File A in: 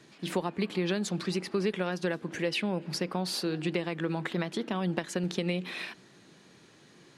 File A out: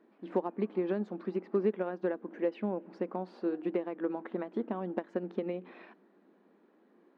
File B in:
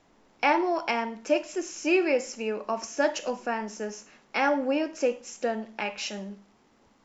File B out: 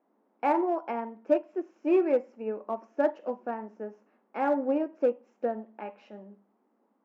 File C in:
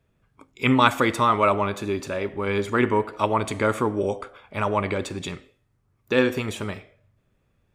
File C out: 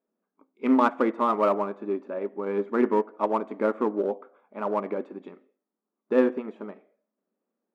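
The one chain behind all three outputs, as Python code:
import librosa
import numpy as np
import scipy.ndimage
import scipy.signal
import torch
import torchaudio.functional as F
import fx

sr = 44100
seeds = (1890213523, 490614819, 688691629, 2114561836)

p1 = scipy.signal.sosfilt(scipy.signal.butter(2, 1000.0, 'lowpass', fs=sr, output='sos'), x)
p2 = np.clip(p1, -10.0 ** (-21.0 / 20.0), 10.0 ** (-21.0 / 20.0))
p3 = p1 + F.gain(torch.from_numpy(p2), -7.0).numpy()
p4 = fx.brickwall_highpass(p3, sr, low_hz=190.0)
p5 = fx.upward_expand(p4, sr, threshold_db=-36.0, expansion=1.5)
y = F.gain(torch.from_numpy(p5), -1.0).numpy()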